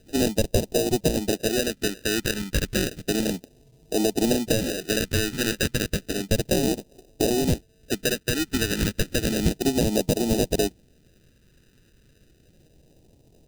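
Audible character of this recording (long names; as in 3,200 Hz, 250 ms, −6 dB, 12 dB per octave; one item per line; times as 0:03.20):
aliases and images of a low sample rate 1,100 Hz, jitter 0%
phaser sweep stages 2, 0.32 Hz, lowest notch 700–1,400 Hz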